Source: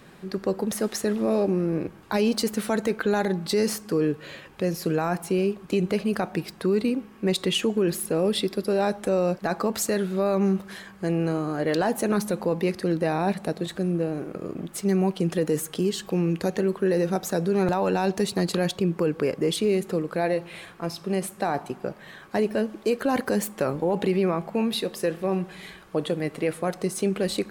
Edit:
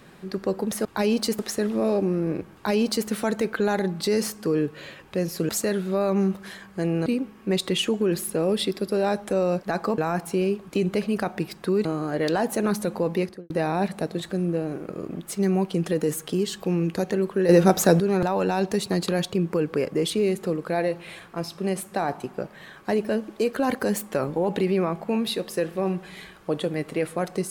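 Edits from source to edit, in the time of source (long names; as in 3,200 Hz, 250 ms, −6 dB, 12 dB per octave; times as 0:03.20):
0:02.00–0:02.54: duplicate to 0:00.85
0:04.95–0:06.82: swap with 0:09.74–0:11.31
0:12.63–0:12.96: fade out and dull
0:16.95–0:17.46: clip gain +8.5 dB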